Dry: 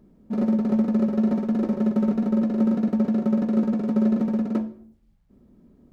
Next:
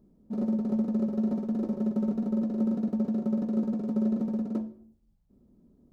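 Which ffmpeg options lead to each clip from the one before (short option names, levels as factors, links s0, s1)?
-af "equalizer=f=2000:w=0.8:g=-9.5,volume=0.501"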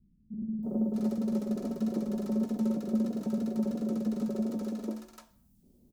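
-filter_complex "[0:a]crystalizer=i=4:c=0,acrossover=split=210|940[s0][s1][s2];[s1]adelay=330[s3];[s2]adelay=630[s4];[s0][s3][s4]amix=inputs=3:normalize=0"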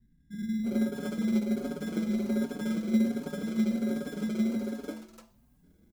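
-filter_complex "[0:a]asplit=2[s0][s1];[s1]acrusher=samples=24:mix=1:aa=0.000001,volume=0.668[s2];[s0][s2]amix=inputs=2:normalize=0,asplit=2[s3][s4];[s4]adelay=5.3,afreqshift=1.3[s5];[s3][s5]amix=inputs=2:normalize=1"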